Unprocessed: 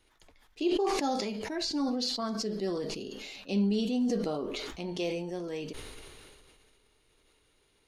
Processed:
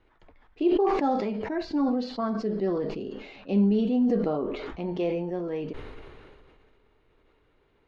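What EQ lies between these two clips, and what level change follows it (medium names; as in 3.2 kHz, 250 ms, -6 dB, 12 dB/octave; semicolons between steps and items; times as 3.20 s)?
low-pass 1.7 kHz 12 dB/octave; +5.5 dB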